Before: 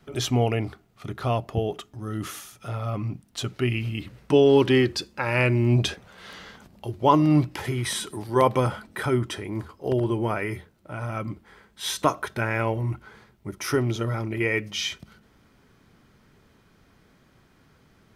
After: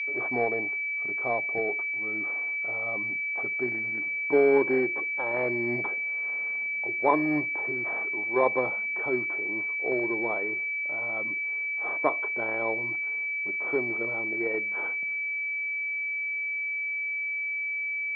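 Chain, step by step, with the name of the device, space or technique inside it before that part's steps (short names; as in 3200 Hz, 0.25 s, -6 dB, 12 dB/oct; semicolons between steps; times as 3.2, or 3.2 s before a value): toy sound module (decimation joined by straight lines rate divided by 4×; pulse-width modulation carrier 2300 Hz; speaker cabinet 510–4400 Hz, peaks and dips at 580 Hz -3 dB, 930 Hz -4 dB, 1400 Hz -9 dB, 2600 Hz -6 dB, 4100 Hz -6 dB); gain +2.5 dB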